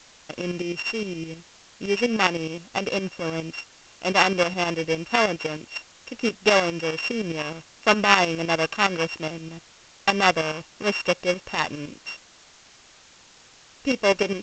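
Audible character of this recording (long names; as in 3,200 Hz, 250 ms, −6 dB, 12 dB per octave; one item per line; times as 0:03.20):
a buzz of ramps at a fixed pitch in blocks of 16 samples
tremolo saw up 9.7 Hz, depth 65%
a quantiser's noise floor 8 bits, dither triangular
G.722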